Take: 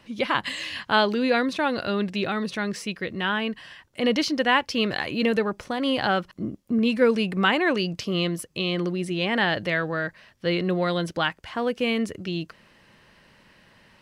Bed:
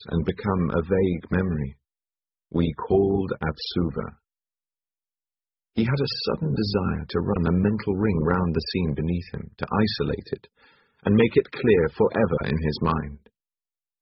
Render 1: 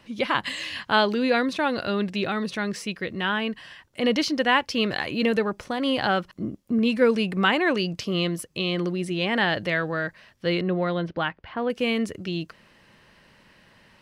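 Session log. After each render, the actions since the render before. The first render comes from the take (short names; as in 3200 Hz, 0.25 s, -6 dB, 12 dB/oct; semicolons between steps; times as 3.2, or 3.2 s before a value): 10.61–11.7 air absorption 310 m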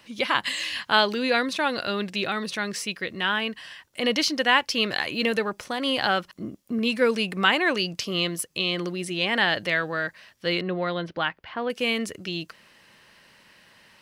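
tilt +2 dB/oct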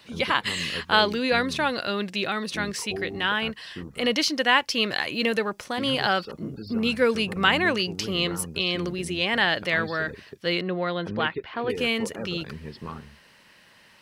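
add bed -14 dB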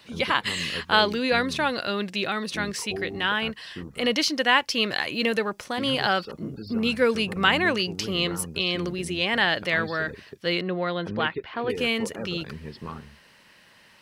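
nothing audible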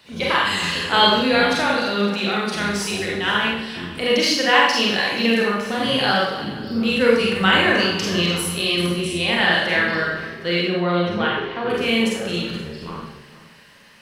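regenerating reverse delay 0.239 s, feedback 44%, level -13 dB; Schroeder reverb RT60 0.74 s, combs from 31 ms, DRR -4 dB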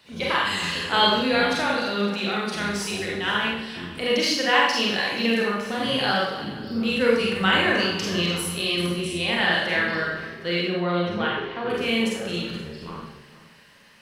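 gain -4 dB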